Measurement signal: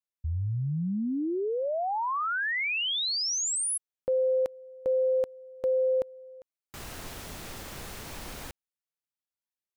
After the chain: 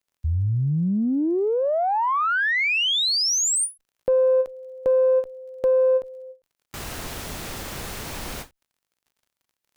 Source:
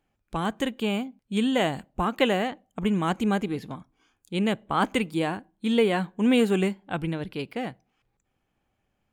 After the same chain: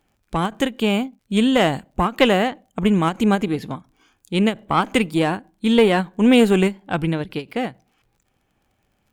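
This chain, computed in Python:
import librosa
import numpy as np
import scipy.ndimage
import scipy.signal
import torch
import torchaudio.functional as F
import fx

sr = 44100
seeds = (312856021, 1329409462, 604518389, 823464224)

y = fx.diode_clip(x, sr, knee_db=-15.5)
y = fx.dmg_crackle(y, sr, seeds[0], per_s=45.0, level_db=-59.0)
y = fx.end_taper(y, sr, db_per_s=290.0)
y = y * librosa.db_to_amplitude(8.0)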